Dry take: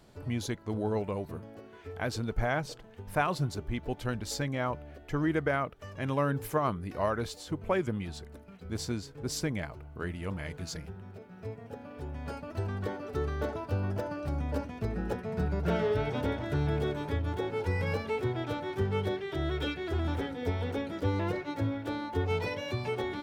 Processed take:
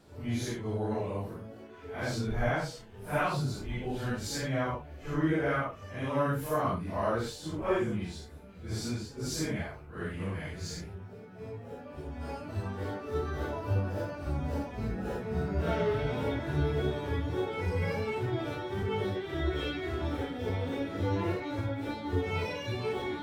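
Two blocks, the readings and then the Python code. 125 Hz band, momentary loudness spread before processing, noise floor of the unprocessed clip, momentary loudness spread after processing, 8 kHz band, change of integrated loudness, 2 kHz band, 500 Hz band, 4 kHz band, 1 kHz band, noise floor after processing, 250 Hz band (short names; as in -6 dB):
0.0 dB, 12 LU, -51 dBFS, 11 LU, 0.0 dB, 0.0 dB, 0.0 dB, 0.0 dB, 0.0 dB, -0.5 dB, -48 dBFS, 0.0 dB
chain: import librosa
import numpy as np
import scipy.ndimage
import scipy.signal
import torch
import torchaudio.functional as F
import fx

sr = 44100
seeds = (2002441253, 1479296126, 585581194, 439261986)

y = fx.phase_scramble(x, sr, seeds[0], window_ms=200)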